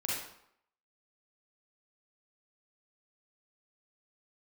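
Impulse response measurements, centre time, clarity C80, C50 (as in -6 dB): 67 ms, 3.5 dB, -1.5 dB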